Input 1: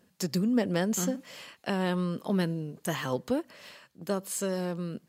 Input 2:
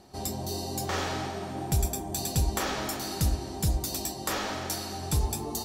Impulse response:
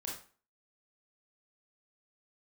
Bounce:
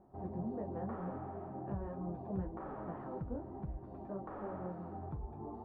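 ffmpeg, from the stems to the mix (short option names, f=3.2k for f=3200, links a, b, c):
-filter_complex "[0:a]flanger=delay=15.5:depth=6.8:speed=0.4,volume=-7.5dB[a];[1:a]acompressor=threshold=-30dB:ratio=6,volume=-4.5dB[b];[a][b]amix=inputs=2:normalize=0,lowpass=f=1.2k:w=0.5412,lowpass=f=1.2k:w=1.3066,flanger=delay=5.2:depth=5.1:regen=-50:speed=1.9:shape=sinusoidal"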